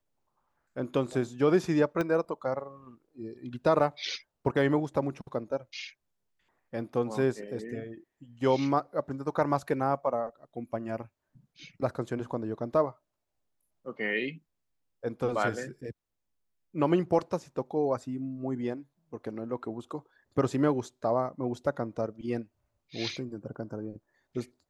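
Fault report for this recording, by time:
2.01 pop -18 dBFS

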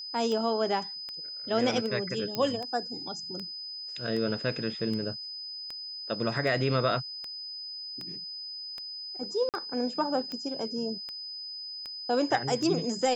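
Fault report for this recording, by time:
tick 78 rpm -24 dBFS
tone 5000 Hz -37 dBFS
2.35 pop -16 dBFS
9.49–9.54 gap 48 ms

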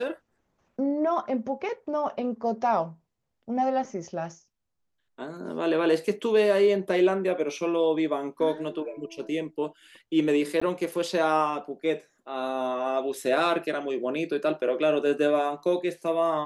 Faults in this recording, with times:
10.6–10.62 gap

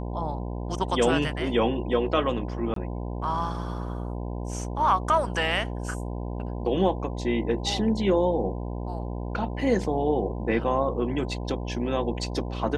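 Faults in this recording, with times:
buzz 60 Hz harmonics 17 -32 dBFS
2.74–2.76 gap 23 ms

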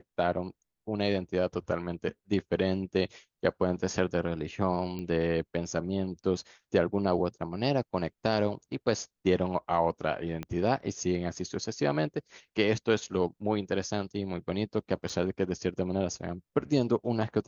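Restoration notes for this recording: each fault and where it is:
4.99 pop -25 dBFS
10.43 pop -22 dBFS
15.09–15.1 gap 5.6 ms

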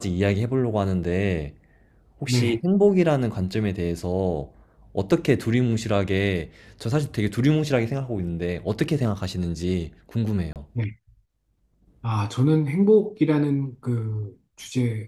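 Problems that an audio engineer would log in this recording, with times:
10.53–10.56 gap 28 ms

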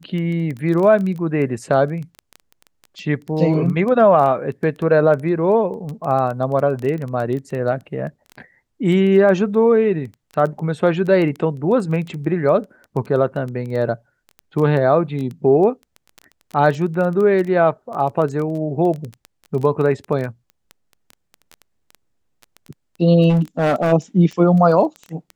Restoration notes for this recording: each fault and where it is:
crackle 11/s -24 dBFS
23.29–23.93 clipped -12.5 dBFS

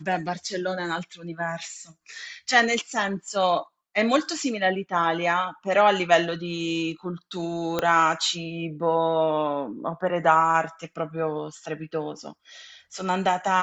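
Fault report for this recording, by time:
7.79 pop -10 dBFS

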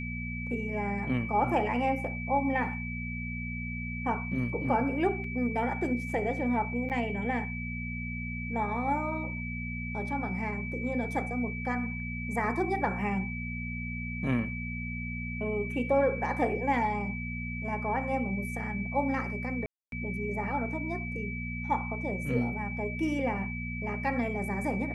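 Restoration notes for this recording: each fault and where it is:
hum 60 Hz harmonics 4 -37 dBFS
tone 2300 Hz -38 dBFS
5.24 gap 2.9 ms
6.89–6.9 gap 8.3 ms
19.66–19.92 gap 0.262 s

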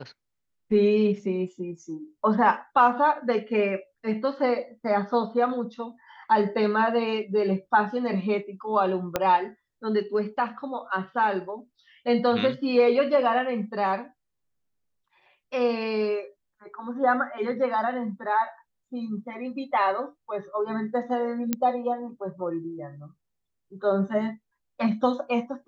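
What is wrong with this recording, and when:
9.16 pop -9 dBFS
21.53 pop -10 dBFS

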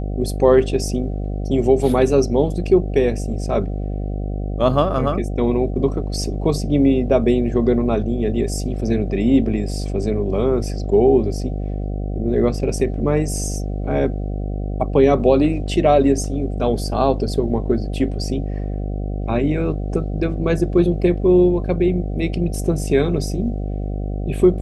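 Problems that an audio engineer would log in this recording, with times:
buzz 50 Hz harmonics 15 -24 dBFS

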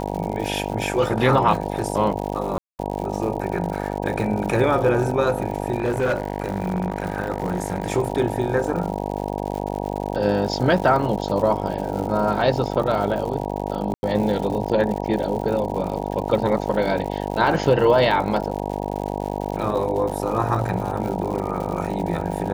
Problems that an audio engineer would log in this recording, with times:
buzz 50 Hz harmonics 19 -27 dBFS
crackle 130/s -29 dBFS
2.58–2.79 gap 0.209 s
5.78–7.92 clipped -16.5 dBFS
13.94–14.03 gap 91 ms

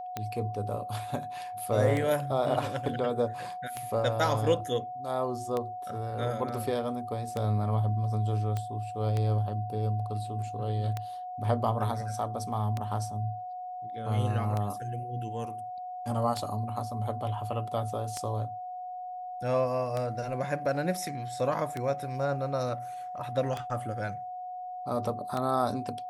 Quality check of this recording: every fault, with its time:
tick 33 1/3 rpm -18 dBFS
tone 730 Hz -36 dBFS
8.57 pop -20 dBFS

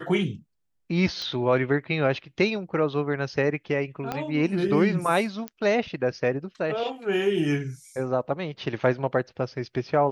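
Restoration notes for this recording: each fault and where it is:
1.22 pop -19 dBFS
4.12 pop -15 dBFS
5.48 pop -18 dBFS

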